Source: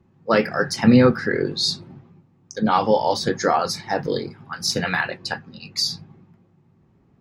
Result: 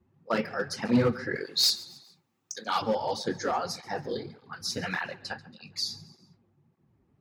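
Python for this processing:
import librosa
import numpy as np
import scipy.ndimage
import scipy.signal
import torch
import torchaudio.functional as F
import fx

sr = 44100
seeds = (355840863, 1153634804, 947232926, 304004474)

y = fx.tilt_eq(x, sr, slope=4.5, at=(1.35, 2.82))
y = np.clip(y, -10.0 ** (-9.0 / 20.0), 10.0 ** (-9.0 / 20.0))
y = fx.echo_feedback(y, sr, ms=137, feedback_pct=45, wet_db=-20)
y = fx.flanger_cancel(y, sr, hz=1.7, depth_ms=7.5)
y = y * 10.0 ** (-6.5 / 20.0)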